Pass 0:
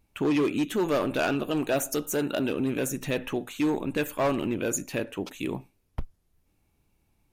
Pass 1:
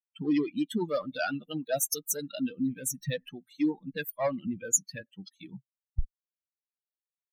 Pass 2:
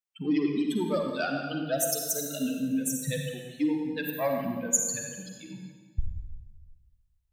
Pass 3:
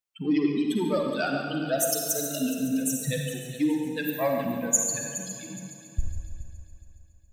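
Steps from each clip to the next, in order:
expander on every frequency bin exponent 3; fifteen-band graphic EQ 100 Hz -3 dB, 400 Hz -11 dB, 1 kHz -10 dB, 2.5 kHz -9 dB, 6.3 kHz +3 dB; trim +7 dB
reverberation RT60 1.6 s, pre-delay 38 ms, DRR 1.5 dB
multi-head delay 139 ms, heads first and third, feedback 53%, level -14 dB; trim +2 dB

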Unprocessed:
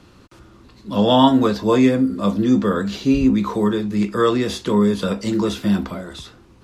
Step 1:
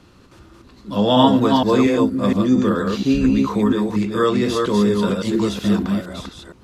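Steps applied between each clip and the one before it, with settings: chunks repeated in reverse 233 ms, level -3 dB; trim -1 dB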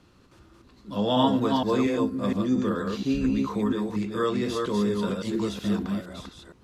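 feedback comb 150 Hz, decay 0.7 s, harmonics odd, mix 40%; trim -4 dB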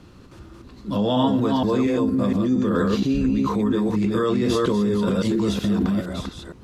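bass shelf 450 Hz +5.5 dB; in parallel at 0 dB: compressor with a negative ratio -26 dBFS, ratio -0.5; on the sum: trim -2 dB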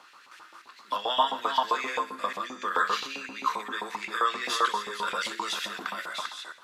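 thinning echo 63 ms, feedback 55%, level -13.5 dB; LFO high-pass saw up 7.6 Hz 840–2300 Hz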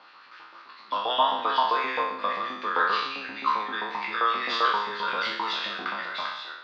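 spectral sustain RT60 0.75 s; Chebyshev low-pass 4.7 kHz, order 4

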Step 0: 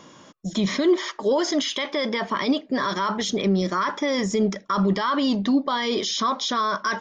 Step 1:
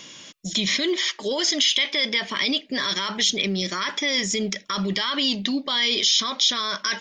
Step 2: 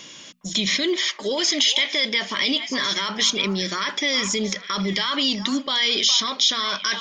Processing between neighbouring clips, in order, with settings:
resonant high shelf 1.7 kHz +12.5 dB, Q 1.5; in parallel at -0.5 dB: compression, threshold -24 dBFS, peak gain reduction 14 dB; on the sum: trim -8 dB
hum notches 60/120/180/240 Hz; repeats whose band climbs or falls 411 ms, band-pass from 940 Hz, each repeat 1.4 oct, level -7 dB; trim +1 dB

